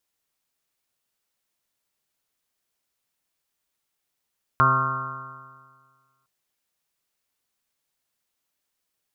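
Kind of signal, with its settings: stretched partials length 1.66 s, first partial 130 Hz, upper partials -9.5/-11.5/-15/-11/-17/-8.5/5/1/4/-9.5 dB, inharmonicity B 0.0012, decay 1.69 s, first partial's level -22 dB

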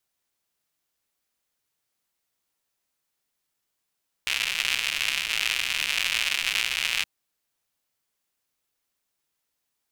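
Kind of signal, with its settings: rain from filtered ticks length 2.77 s, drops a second 160, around 2600 Hz, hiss -23 dB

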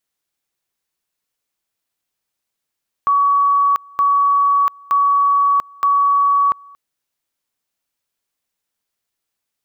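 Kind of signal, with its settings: two-level tone 1130 Hz -11 dBFS, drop 27.5 dB, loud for 0.69 s, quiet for 0.23 s, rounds 4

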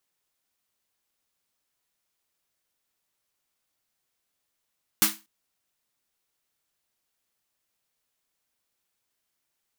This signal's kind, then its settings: snare drum length 0.24 s, tones 210 Hz, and 320 Hz, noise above 860 Hz, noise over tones 12 dB, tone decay 0.27 s, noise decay 0.26 s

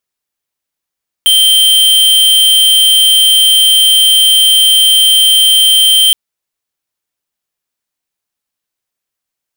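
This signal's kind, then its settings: tone square 3140 Hz -7 dBFS 4.87 s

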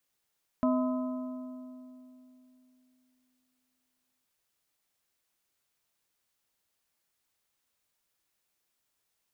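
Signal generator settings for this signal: metal hit plate, length 3.62 s, lowest mode 254 Hz, modes 4, decay 3.24 s, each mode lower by 5 dB, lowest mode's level -23.5 dB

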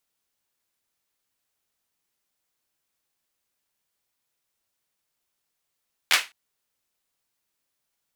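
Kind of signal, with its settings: hand clap length 0.21 s, bursts 3, apart 12 ms, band 2200 Hz, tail 0.24 s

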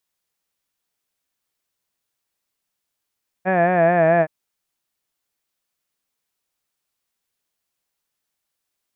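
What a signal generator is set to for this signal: formant-synthesis vowel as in had, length 0.82 s, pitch 182 Hz, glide -2 st, vibrato 4.6 Hz, vibrato depth 0.8 st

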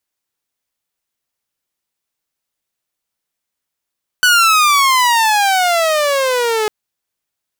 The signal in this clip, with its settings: gliding synth tone saw, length 2.45 s, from 1500 Hz, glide -22 st, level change -6.5 dB, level -5 dB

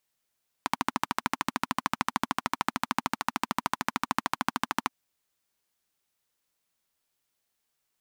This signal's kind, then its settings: single-cylinder engine model, steady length 4.26 s, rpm 1600, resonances 250/970 Hz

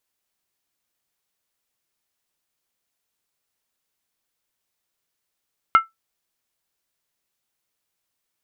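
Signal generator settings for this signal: skin hit, lowest mode 1330 Hz, decay 0.16 s, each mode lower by 11.5 dB, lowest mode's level -5.5 dB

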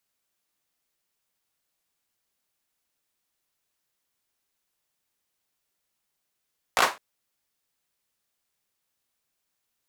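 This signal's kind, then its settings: hand clap length 0.21 s, apart 17 ms, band 970 Hz, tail 0.25 s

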